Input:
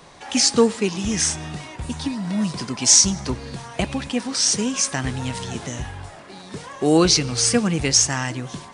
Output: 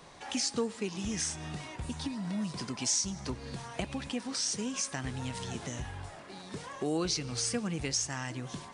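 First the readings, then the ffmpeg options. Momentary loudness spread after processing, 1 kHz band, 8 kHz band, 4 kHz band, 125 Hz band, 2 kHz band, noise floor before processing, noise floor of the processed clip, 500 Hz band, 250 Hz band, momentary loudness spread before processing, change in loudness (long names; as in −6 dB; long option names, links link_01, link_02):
10 LU, −12.0 dB, −15.0 dB, −14.0 dB, −11.5 dB, −12.0 dB, −41 dBFS, −48 dBFS, −14.5 dB, −13.0 dB, 17 LU, −14.5 dB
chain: -af "acompressor=threshold=-29dB:ratio=2,volume=-6.5dB"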